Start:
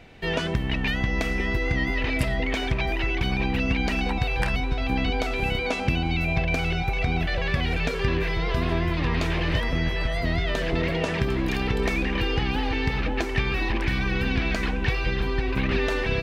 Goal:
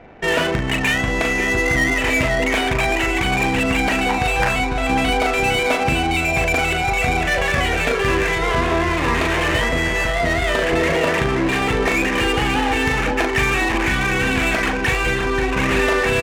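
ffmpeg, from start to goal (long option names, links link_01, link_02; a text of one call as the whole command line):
ffmpeg -i in.wav -filter_complex "[0:a]asplit=2[link_01][link_02];[link_02]adelay=39,volume=-5dB[link_03];[link_01][link_03]amix=inputs=2:normalize=0,asplit=2[link_04][link_05];[link_05]highpass=frequency=720:poles=1,volume=14dB,asoftclip=type=tanh:threshold=-8.5dB[link_06];[link_04][link_06]amix=inputs=2:normalize=0,lowpass=frequency=2000:poles=1,volume=-6dB,adynamicsmooth=sensitivity=4:basefreq=1100,volume=4.5dB" out.wav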